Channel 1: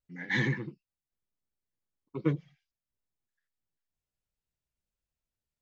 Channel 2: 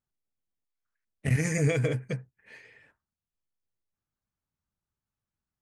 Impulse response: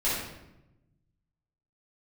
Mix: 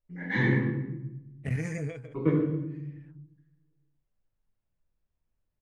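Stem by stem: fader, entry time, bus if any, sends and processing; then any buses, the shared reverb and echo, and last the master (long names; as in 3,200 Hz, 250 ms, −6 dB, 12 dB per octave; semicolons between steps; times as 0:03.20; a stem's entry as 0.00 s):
−0.5 dB, 0.00 s, send −5 dB, high-shelf EQ 2,400 Hz −9 dB
−4.5 dB, 0.20 s, no send, automatic ducking −17 dB, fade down 0.40 s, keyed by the first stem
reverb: on, RT60 0.90 s, pre-delay 5 ms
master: high-shelf EQ 4,000 Hz −12 dB; hum removal 118.8 Hz, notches 12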